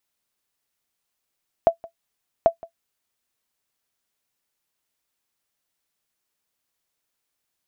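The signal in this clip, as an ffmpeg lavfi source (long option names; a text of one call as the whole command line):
ffmpeg -f lavfi -i "aevalsrc='0.531*(sin(2*PI*669*mod(t,0.79))*exp(-6.91*mod(t,0.79)/0.1)+0.075*sin(2*PI*669*max(mod(t,0.79)-0.17,0))*exp(-6.91*max(mod(t,0.79)-0.17,0)/0.1))':duration=1.58:sample_rate=44100" out.wav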